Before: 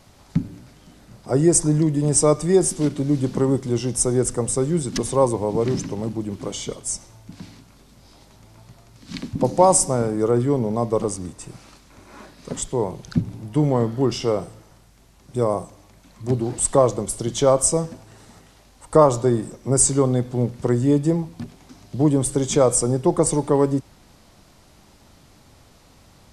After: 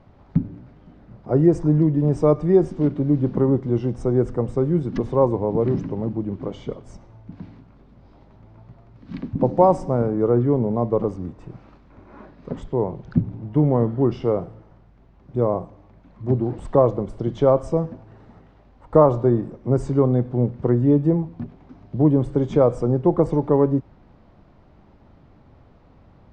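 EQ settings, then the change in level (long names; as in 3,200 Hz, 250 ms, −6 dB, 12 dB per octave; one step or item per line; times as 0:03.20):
high-frequency loss of the air 89 metres
head-to-tape spacing loss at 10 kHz 21 dB
high-shelf EQ 2,500 Hz −11 dB
+2.0 dB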